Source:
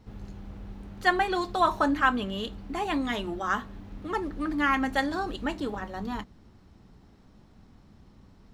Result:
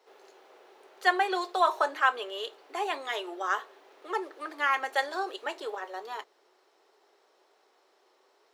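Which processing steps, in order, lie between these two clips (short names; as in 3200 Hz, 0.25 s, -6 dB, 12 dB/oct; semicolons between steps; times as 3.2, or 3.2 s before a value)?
Chebyshev high-pass 380 Hz, order 5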